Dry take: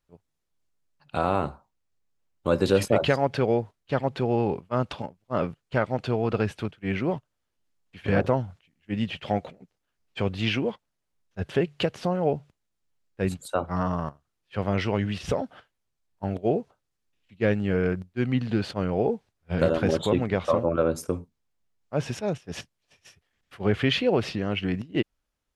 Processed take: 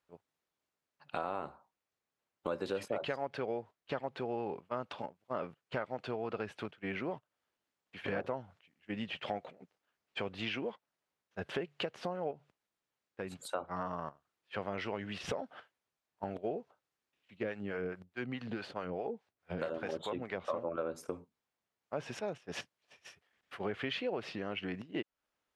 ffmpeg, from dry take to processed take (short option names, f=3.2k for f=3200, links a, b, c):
-filter_complex "[0:a]asettb=1/sr,asplit=3[a][b][c];[a]atrim=end=12.314[d];[b]atrim=start=12.31:end=13.54,asetpts=PTS-STARTPTS,afade=t=in:d=0.004:c=qsin,afade=t=out:st=1.226:d=0.004:c=qsin,acompressor=threshold=-35dB:ratio=2:attack=3.2:release=140:knee=1:detection=peak[e];[c]atrim=start=13.536[f];[d][e]acrossfade=d=0.004:c1=hsin:c2=qsin[g];[g][f]acrossfade=d=0.004:c1=qsin:c2=hsin,asettb=1/sr,asplit=3[h][i][j];[h]atrim=end=17.434[k];[i]atrim=start=17.43:end=20.5,asetpts=PTS-STARTPTS,afade=t=in:d=0.004:c=qsin,afade=t=out:st=3.066:d=0.004:c=qsin,acrossover=split=570[l][m];[l]aeval=exprs='val(0)*(1-0.7/2+0.7/2*cos(2*PI*4.7*n/s))':c=same[n];[m]aeval=exprs='val(0)*(1-0.7/2-0.7/2*cos(2*PI*4.7*n/s))':c=same[o];[n][o]amix=inputs=2:normalize=0[p];[j]atrim=start=20.496[q];[k][p]acrossfade=d=0.004:c1=hsin:c2=qsin[r];[r][q]acrossfade=d=0.004:c1=qsin:c2=hsin,highpass=f=560:p=1,highshelf=f=3.9k:g=-11,acompressor=threshold=-41dB:ratio=3,volume=3.5dB"